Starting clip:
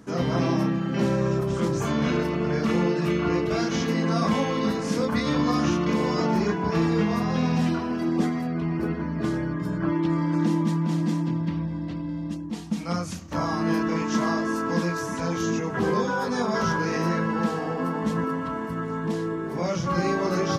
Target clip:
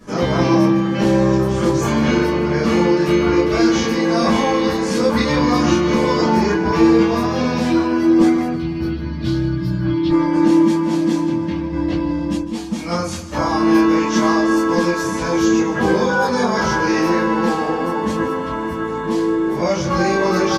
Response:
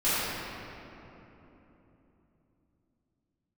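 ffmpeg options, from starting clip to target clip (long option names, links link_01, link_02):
-filter_complex "[0:a]asettb=1/sr,asplit=3[link_01][link_02][link_03];[link_01]atrim=end=8.534[link_04];[link_02]atrim=start=8.53:end=10.1,asetpts=PTS-STARTPTS,afade=type=in:duration=0.004:curve=qsin,afade=type=out:start_time=1.566:duration=0.004:curve=qsin,equalizer=frequency=125:width_type=o:width=1:gain=9,equalizer=frequency=250:width_type=o:width=1:gain=-5,equalizer=frequency=500:width_type=o:width=1:gain=-10,equalizer=frequency=1000:width_type=o:width=1:gain=-8,equalizer=frequency=2000:width_type=o:width=1:gain=-6,equalizer=frequency=4000:width_type=o:width=1:gain=10,equalizer=frequency=8000:width_type=o:width=1:gain=-10[link_05];[link_03]atrim=start=10.096[link_06];[link_04][link_05]acrossfade=duration=0.004:curve1=hsin:curve2=qsin[link_07];[link_07][link_06]acrossfade=duration=0.004:curve1=qsin:curve2=hsin,asettb=1/sr,asplit=3[link_08][link_09][link_10];[link_08]atrim=end=11.724[link_11];[link_09]atrim=start=11.72:end=12.41,asetpts=PTS-STARTPTS,afade=type=in:duration=0.004:curve=qsin,afade=type=out:start_time=0.686:duration=0.004:curve=qsin,acontrast=38[link_12];[link_10]atrim=start=12.406[link_13];[link_11][link_12]acrossfade=duration=0.004:curve1=hsin:curve2=qsin[link_14];[link_14][link_13]acrossfade=duration=0.004:curve1=qsin:curve2=hsin,aecho=1:1:152|304|456|608:0.178|0.0694|0.027|0.0105[link_15];[1:a]atrim=start_sample=2205,atrim=end_sample=3528,asetrate=79380,aresample=44100[link_16];[link_15][link_16]afir=irnorm=-1:irlink=0,volume=4.5dB"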